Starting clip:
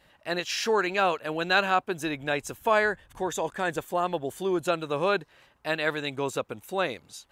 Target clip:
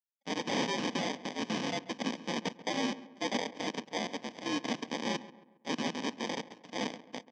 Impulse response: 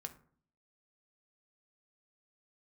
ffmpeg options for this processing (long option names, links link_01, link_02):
-filter_complex "[0:a]bandreject=frequency=2200:width=13,afftfilt=real='re*gte(hypot(re,im),0.01)':imag='im*gte(hypot(re,im),0.01)':win_size=1024:overlap=0.75,bandreject=frequency=50:width_type=h:width=6,bandreject=frequency=100:width_type=h:width=6,bandreject=frequency=150:width_type=h:width=6,bandreject=frequency=200:width_type=h:width=6,bandreject=frequency=250:width_type=h:width=6,bandreject=frequency=300:width_type=h:width=6,adynamicequalizer=threshold=0.00891:dfrequency=460:dqfactor=1.8:tfrequency=460:tqfactor=1.8:attack=5:release=100:ratio=0.375:range=2:mode=cutabove:tftype=bell,alimiter=limit=-18.5dB:level=0:latency=1:release=20,afreqshift=-54,crystalizer=i=5.5:c=0,acrusher=samples=32:mix=1:aa=0.000001,asoftclip=type=tanh:threshold=-17.5dB,aeval=exprs='0.0596*(cos(1*acos(clip(val(0)/0.0596,-1,1)))-cos(1*PI/2))+0.0266*(cos(3*acos(clip(val(0)/0.0596,-1,1)))-cos(3*PI/2))+0.00473*(cos(4*acos(clip(val(0)/0.0596,-1,1)))-cos(4*PI/2))+0.00188*(cos(5*acos(clip(val(0)/0.0596,-1,1)))-cos(5*PI/2))+0.00531*(cos(8*acos(clip(val(0)/0.0596,-1,1)))-cos(8*PI/2))':channel_layout=same,highpass=frequency=200:width=0.5412,highpass=frequency=200:width=1.3066,equalizer=frequency=230:width_type=q:width=4:gain=4,equalizer=frequency=380:width_type=q:width=4:gain=-8,equalizer=frequency=630:width_type=q:width=4:gain=-4,equalizer=frequency=1300:width_type=q:width=4:gain=-4,equalizer=frequency=2900:width_type=q:width=4:gain=8,equalizer=frequency=5600:width_type=q:width=4:gain=8,lowpass=frequency=6100:width=0.5412,lowpass=frequency=6100:width=1.3066,asplit=2[link_01][link_02];[link_02]adelay=136,lowpass=frequency=2100:poles=1,volume=-16dB,asplit=2[link_03][link_04];[link_04]adelay=136,lowpass=frequency=2100:poles=1,volume=0.45,asplit=2[link_05][link_06];[link_06]adelay=136,lowpass=frequency=2100:poles=1,volume=0.45,asplit=2[link_07][link_08];[link_08]adelay=136,lowpass=frequency=2100:poles=1,volume=0.45[link_09];[link_03][link_05][link_07][link_09]amix=inputs=4:normalize=0[link_10];[link_01][link_10]amix=inputs=2:normalize=0,volume=-4dB"